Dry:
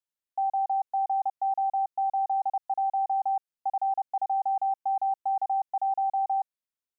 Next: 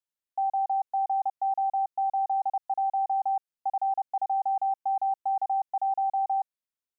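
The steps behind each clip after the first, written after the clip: nothing audible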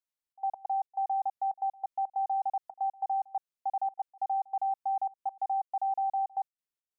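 step gate "xxx.x.xx.xx" 139 bpm -24 dB; gain -3 dB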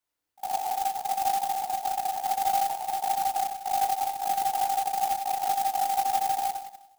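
FDN reverb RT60 0.86 s, high-frequency decay 0.65×, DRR -5.5 dB; clock jitter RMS 0.059 ms; gain +4 dB

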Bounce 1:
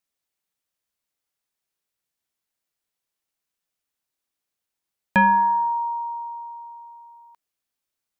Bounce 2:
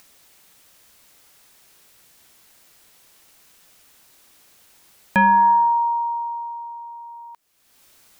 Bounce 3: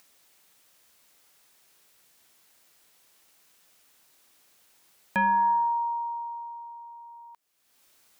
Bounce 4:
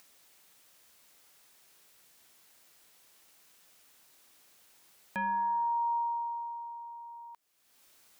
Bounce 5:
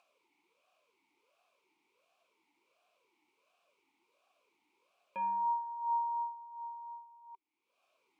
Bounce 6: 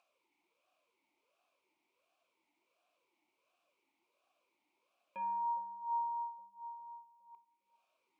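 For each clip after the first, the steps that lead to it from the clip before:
limiter -16.5 dBFS, peak gain reduction 5.5 dB; upward compressor, threshold -39 dBFS; gain +5.5 dB
low shelf 140 Hz -8 dB; gain -8 dB
limiter -27 dBFS, peak gain reduction 9.5 dB
vowel sweep a-u 1.4 Hz; gain +6 dB
notch 430 Hz, Q 13; analogue delay 0.408 s, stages 2048, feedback 49%, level -11 dB; Schroeder reverb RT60 0.56 s, combs from 32 ms, DRR 15.5 dB; gain -5 dB

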